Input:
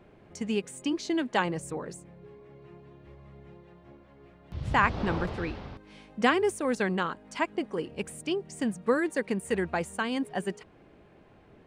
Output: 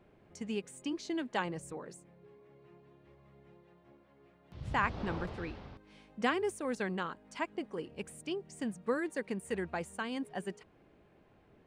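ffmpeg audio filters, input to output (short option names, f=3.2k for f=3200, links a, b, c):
-filter_complex "[0:a]asettb=1/sr,asplit=3[a][b][c];[a]atrim=end=1.724[d];[b]atrim=start=1.72:end=4.59,asetpts=PTS-STARTPTS,afade=t=in:d=0.004:c=qsin,afade=t=out:st=2.866:d=0.004:c=qsin,highpass=f=150:p=1[e];[c]atrim=start=4.586[f];[d][e]acrossfade=d=0.004:c1=hsin:c2=qsin[g];[g][f]acrossfade=d=0.004:c1=qsin:c2=hsin,volume=-7.5dB"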